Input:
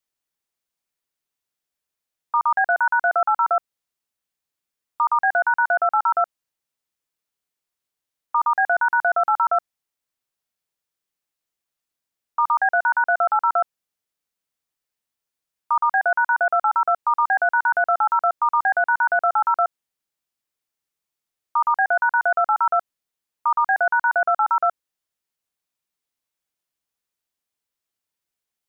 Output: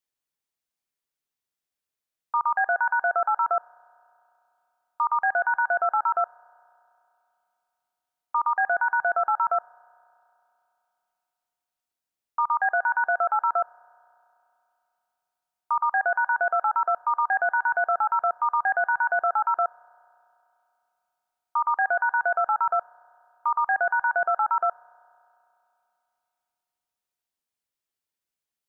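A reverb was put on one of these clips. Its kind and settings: spring tank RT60 2.9 s, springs 32 ms, chirp 55 ms, DRR 20 dB; trim -4 dB

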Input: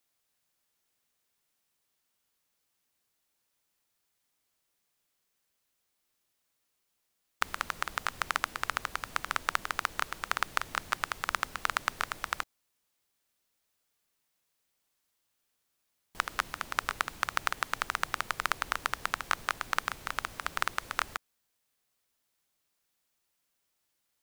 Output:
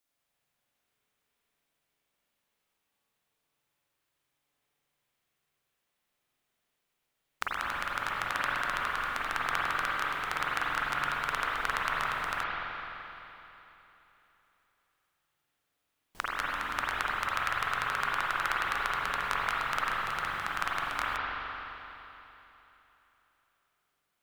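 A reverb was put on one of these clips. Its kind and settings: spring tank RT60 3.3 s, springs 42/49 ms, chirp 65 ms, DRR -7 dB; trim -5 dB

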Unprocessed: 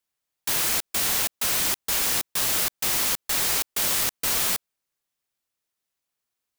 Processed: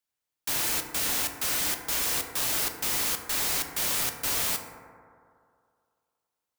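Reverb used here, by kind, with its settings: FDN reverb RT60 2.3 s, low-frequency decay 0.85×, high-frequency decay 0.25×, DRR 4 dB; trim -4.5 dB

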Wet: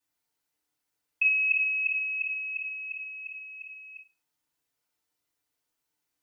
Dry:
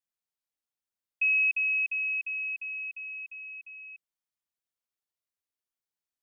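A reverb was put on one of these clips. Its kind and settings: FDN reverb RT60 0.37 s, low-frequency decay 1×, high-frequency decay 0.7×, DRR -7 dB; trim +3 dB

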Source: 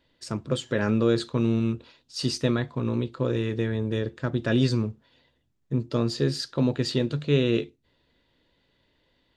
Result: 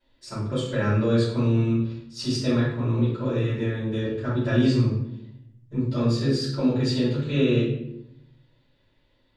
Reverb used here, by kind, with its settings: simulated room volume 180 m³, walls mixed, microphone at 5.3 m; trim -14.5 dB

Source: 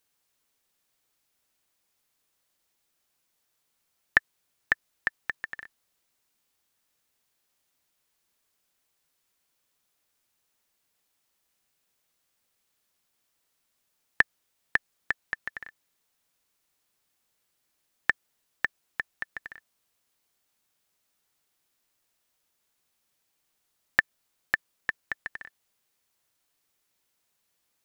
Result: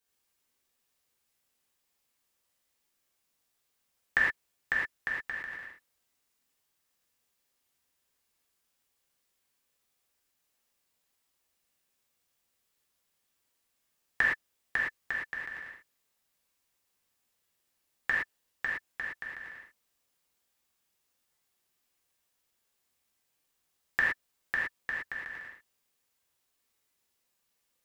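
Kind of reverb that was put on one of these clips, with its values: gated-style reverb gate 140 ms flat, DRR -6 dB; trim -9 dB

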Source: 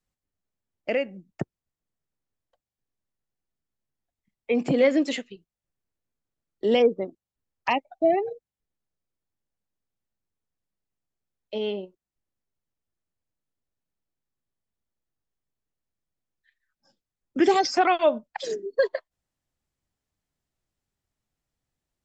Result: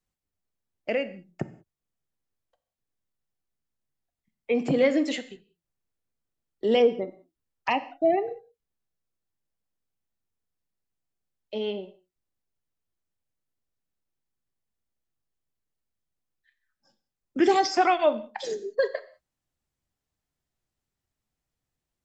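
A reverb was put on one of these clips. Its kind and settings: gated-style reverb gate 220 ms falling, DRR 11 dB; trim -1.5 dB

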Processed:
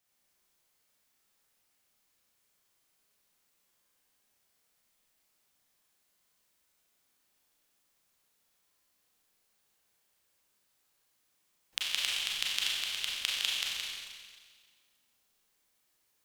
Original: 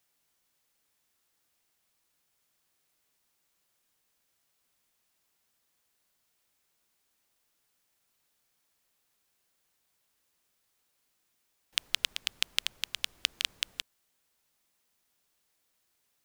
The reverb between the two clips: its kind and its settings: Schroeder reverb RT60 1.7 s, combs from 30 ms, DRR -5 dB; trim -5 dB

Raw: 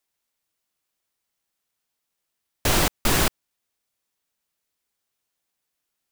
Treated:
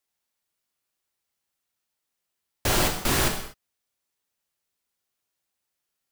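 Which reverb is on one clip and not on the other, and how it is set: gated-style reverb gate 270 ms falling, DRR 3 dB; trim -3.5 dB

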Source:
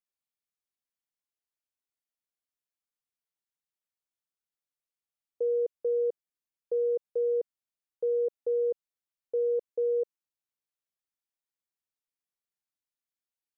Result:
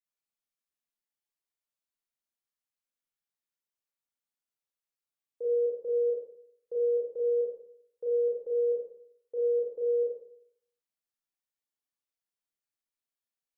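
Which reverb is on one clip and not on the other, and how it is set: Schroeder reverb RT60 0.67 s, combs from 27 ms, DRR -5 dB; trim -8 dB

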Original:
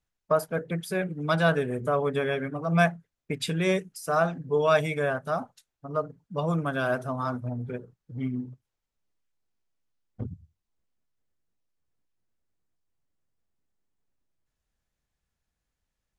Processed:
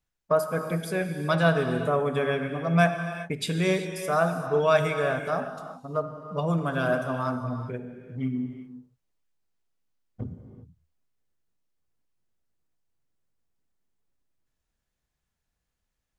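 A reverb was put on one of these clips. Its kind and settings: gated-style reverb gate 420 ms flat, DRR 6.5 dB

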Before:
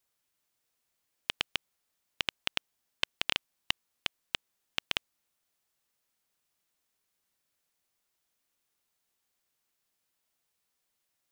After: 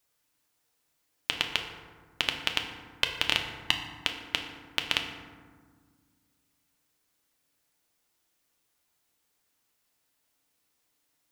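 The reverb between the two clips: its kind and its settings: FDN reverb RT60 1.6 s, low-frequency decay 1.6×, high-frequency decay 0.45×, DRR 3 dB; trim +4 dB

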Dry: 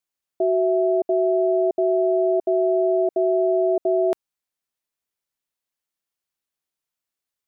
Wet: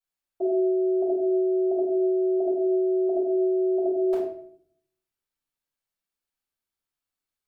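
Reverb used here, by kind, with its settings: simulated room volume 90 m³, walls mixed, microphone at 4.2 m; trim -16.5 dB

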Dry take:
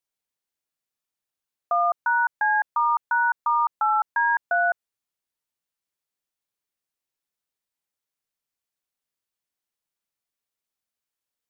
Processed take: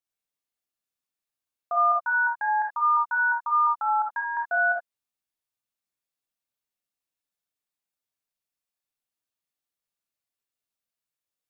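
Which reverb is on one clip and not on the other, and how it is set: gated-style reverb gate 90 ms rising, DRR -1 dB; trim -6.5 dB

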